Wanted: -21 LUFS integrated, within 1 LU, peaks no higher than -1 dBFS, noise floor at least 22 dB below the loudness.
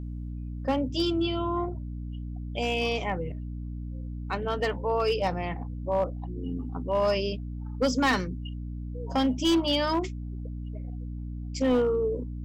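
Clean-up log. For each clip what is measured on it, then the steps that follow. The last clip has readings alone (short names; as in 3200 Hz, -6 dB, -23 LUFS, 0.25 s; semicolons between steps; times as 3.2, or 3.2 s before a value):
clipped 0.7%; flat tops at -18.5 dBFS; hum 60 Hz; harmonics up to 300 Hz; hum level -33 dBFS; loudness -29.5 LUFS; peak -18.5 dBFS; loudness target -21.0 LUFS
-> clip repair -18.5 dBFS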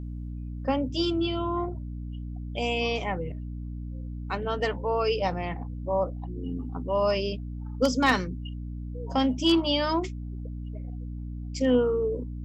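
clipped 0.0%; hum 60 Hz; harmonics up to 300 Hz; hum level -33 dBFS
-> notches 60/120/180/240/300 Hz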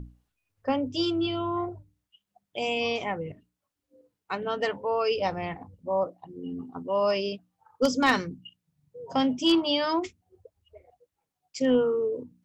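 hum none; loudness -27.5 LUFS; peak -9.0 dBFS; loudness target -21.0 LUFS
-> gain +6.5 dB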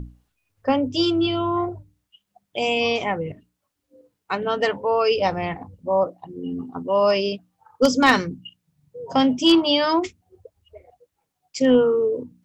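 loudness -21.0 LUFS; peak -2.5 dBFS; noise floor -79 dBFS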